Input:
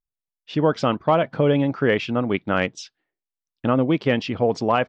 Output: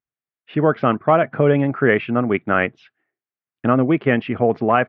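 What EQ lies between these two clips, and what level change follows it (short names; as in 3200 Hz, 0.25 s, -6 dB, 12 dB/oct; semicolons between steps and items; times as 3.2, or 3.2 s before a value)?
speaker cabinet 130–2200 Hz, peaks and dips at 180 Hz -6 dB, 290 Hz -5 dB, 520 Hz -7 dB, 930 Hz -8 dB; +7.0 dB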